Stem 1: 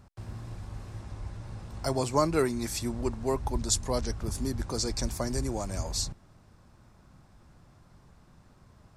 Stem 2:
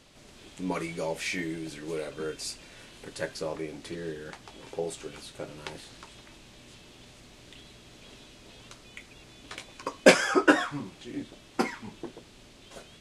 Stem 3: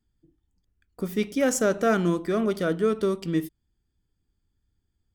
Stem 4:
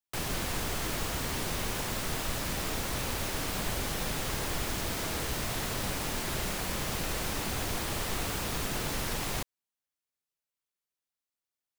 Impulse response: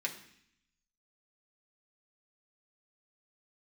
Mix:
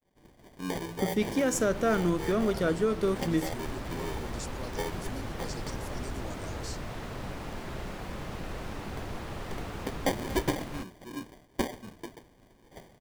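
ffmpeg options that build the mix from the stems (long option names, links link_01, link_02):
-filter_complex "[0:a]alimiter=limit=-22.5dB:level=0:latency=1,adelay=700,volume=-9dB[link_01];[1:a]acrusher=samples=33:mix=1:aa=0.000001,volume=-2.5dB[link_02];[2:a]volume=-1dB[link_03];[3:a]lowpass=frequency=1300:poles=1,adelay=1400,volume=-2.5dB[link_04];[link_01][link_02][link_03][link_04]amix=inputs=4:normalize=0,agate=range=-33dB:threshold=-50dB:ratio=3:detection=peak,alimiter=limit=-17dB:level=0:latency=1:release=376"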